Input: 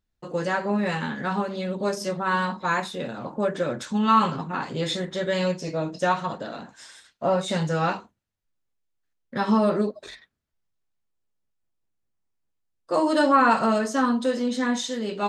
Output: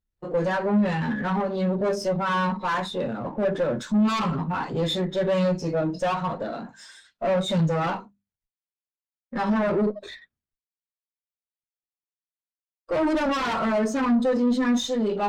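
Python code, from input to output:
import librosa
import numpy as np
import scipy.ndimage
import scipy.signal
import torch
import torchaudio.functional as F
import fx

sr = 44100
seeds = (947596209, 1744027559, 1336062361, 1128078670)

p1 = fx.law_mismatch(x, sr, coded='mu')
p2 = fx.hum_notches(p1, sr, base_hz=50, count=5)
p3 = fx.fold_sine(p2, sr, drive_db=14, ceiling_db=-7.0)
p4 = p2 + (p3 * 10.0 ** (-5.0 / 20.0))
p5 = fx.tube_stage(p4, sr, drive_db=14.0, bias=0.55)
p6 = fx.spectral_expand(p5, sr, expansion=1.5)
y = p6 * 10.0 ** (-3.0 / 20.0)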